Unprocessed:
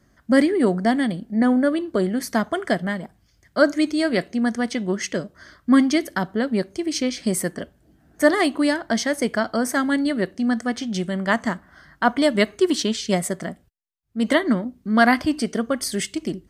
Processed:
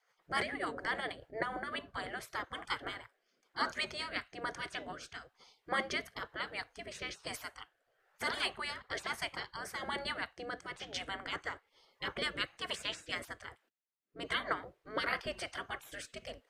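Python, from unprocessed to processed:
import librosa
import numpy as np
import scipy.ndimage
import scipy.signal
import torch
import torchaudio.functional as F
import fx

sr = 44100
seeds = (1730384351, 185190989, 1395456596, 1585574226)

y = fx.rotary_switch(x, sr, hz=7.0, then_hz=1.1, switch_at_s=1.3)
y = fx.bass_treble(y, sr, bass_db=-1, treble_db=-13)
y = fx.spec_gate(y, sr, threshold_db=-20, keep='weak')
y = y * librosa.db_to_amplitude(1.0)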